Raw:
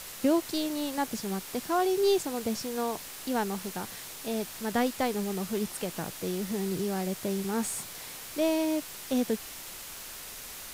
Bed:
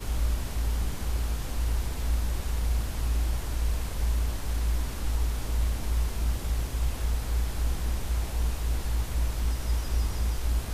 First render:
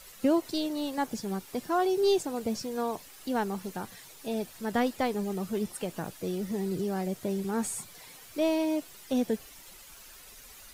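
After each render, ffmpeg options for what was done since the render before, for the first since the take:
ffmpeg -i in.wav -af "afftdn=noise_reduction=11:noise_floor=-43" out.wav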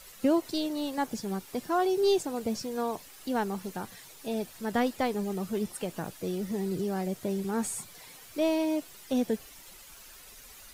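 ffmpeg -i in.wav -af anull out.wav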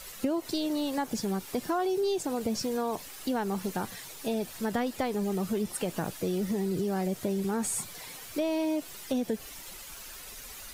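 ffmpeg -i in.wav -filter_complex "[0:a]asplit=2[link_01][link_02];[link_02]alimiter=level_in=3dB:limit=-24dB:level=0:latency=1:release=33,volume=-3dB,volume=-0.5dB[link_03];[link_01][link_03]amix=inputs=2:normalize=0,acompressor=threshold=-26dB:ratio=6" out.wav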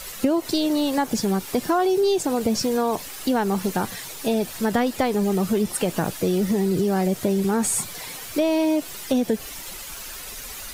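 ffmpeg -i in.wav -af "volume=8.5dB" out.wav

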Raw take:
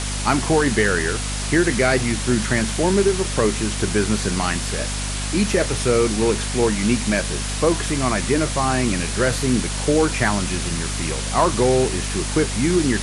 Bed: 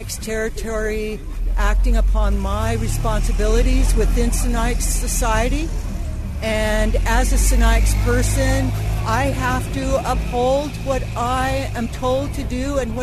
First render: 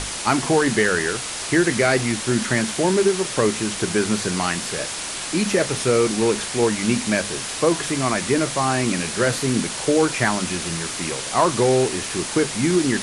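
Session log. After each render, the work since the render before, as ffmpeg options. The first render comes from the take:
ffmpeg -i in.wav -af "bandreject=frequency=50:width_type=h:width=6,bandreject=frequency=100:width_type=h:width=6,bandreject=frequency=150:width_type=h:width=6,bandreject=frequency=200:width_type=h:width=6,bandreject=frequency=250:width_type=h:width=6" out.wav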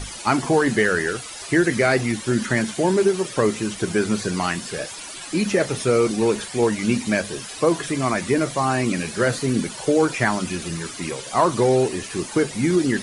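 ffmpeg -i in.wav -af "afftdn=noise_reduction=13:noise_floor=-30" out.wav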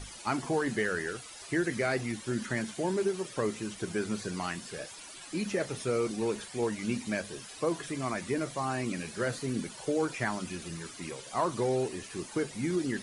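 ffmpeg -i in.wav -af "volume=-11.5dB" out.wav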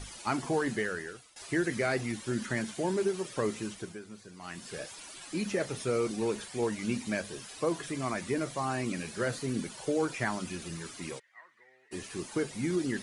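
ffmpeg -i in.wav -filter_complex "[0:a]asplit=3[link_01][link_02][link_03];[link_01]afade=type=out:start_time=11.18:duration=0.02[link_04];[link_02]bandpass=frequency=1900:width_type=q:width=19,afade=type=in:start_time=11.18:duration=0.02,afade=type=out:start_time=11.91:duration=0.02[link_05];[link_03]afade=type=in:start_time=11.91:duration=0.02[link_06];[link_04][link_05][link_06]amix=inputs=3:normalize=0,asplit=4[link_07][link_08][link_09][link_10];[link_07]atrim=end=1.36,asetpts=PTS-STARTPTS,afade=type=out:start_time=0.65:duration=0.71:silence=0.141254[link_11];[link_08]atrim=start=1.36:end=4,asetpts=PTS-STARTPTS,afade=type=in:duration=0.004:curve=hsin:silence=0.141254,afade=type=out:start_time=2.29:duration=0.35:silence=0.199526[link_12];[link_09]atrim=start=4:end=4.39,asetpts=PTS-STARTPTS,volume=-14dB[link_13];[link_10]atrim=start=4.39,asetpts=PTS-STARTPTS,afade=type=in:duration=0.35:silence=0.199526[link_14];[link_11][link_12][link_13][link_14]concat=n=4:v=0:a=1" out.wav

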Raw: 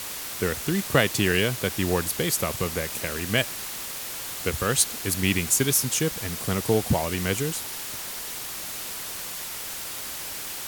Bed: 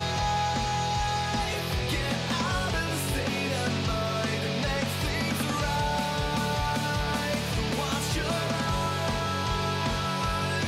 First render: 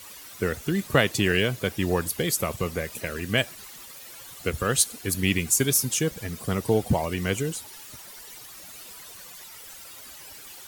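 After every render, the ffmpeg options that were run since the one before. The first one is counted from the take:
ffmpeg -i in.wav -af "afftdn=noise_reduction=13:noise_floor=-35" out.wav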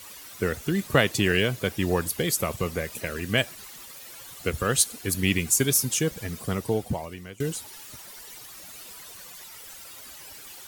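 ffmpeg -i in.wav -filter_complex "[0:a]asplit=2[link_01][link_02];[link_01]atrim=end=7.4,asetpts=PTS-STARTPTS,afade=type=out:start_time=6.35:duration=1.05:silence=0.0749894[link_03];[link_02]atrim=start=7.4,asetpts=PTS-STARTPTS,afade=type=in:duration=0.004:curve=hsin:silence=0.0749894[link_04];[link_03][link_04]concat=n=2:v=0:a=1" out.wav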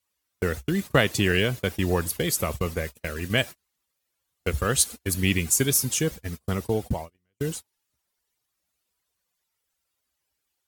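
ffmpeg -i in.wav -af "agate=range=-36dB:threshold=-32dB:ratio=16:detection=peak,equalizer=frequency=64:width=2.2:gain=10" out.wav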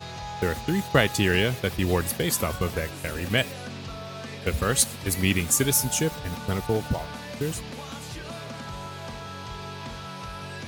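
ffmpeg -i in.wav -i bed.wav -filter_complex "[1:a]volume=-9dB[link_01];[0:a][link_01]amix=inputs=2:normalize=0" out.wav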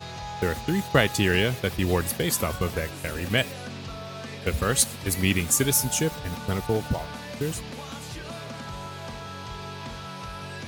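ffmpeg -i in.wav -af anull out.wav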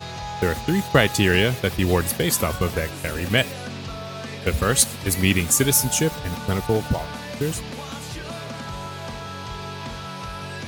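ffmpeg -i in.wav -af "volume=4dB,alimiter=limit=-3dB:level=0:latency=1" out.wav

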